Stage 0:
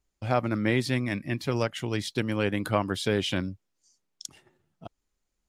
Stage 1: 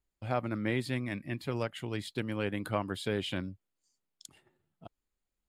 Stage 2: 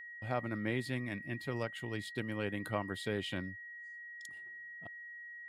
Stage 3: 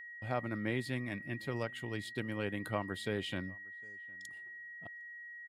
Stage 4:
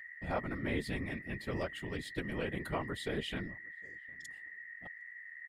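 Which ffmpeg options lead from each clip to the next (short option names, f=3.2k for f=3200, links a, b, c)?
-af "equalizer=f=5.8k:t=o:w=0.3:g=-12,volume=-6.5dB"
-af "aeval=exprs='val(0)+0.00794*sin(2*PI*1900*n/s)':c=same,volume=-4dB"
-filter_complex "[0:a]asplit=2[a][b];[b]adelay=758,volume=-26dB,highshelf=f=4k:g=-17.1[c];[a][c]amix=inputs=2:normalize=0"
-af "afftfilt=real='hypot(re,im)*cos(2*PI*random(0))':imag='hypot(re,im)*sin(2*PI*random(1))':win_size=512:overlap=0.75,volume=6dB"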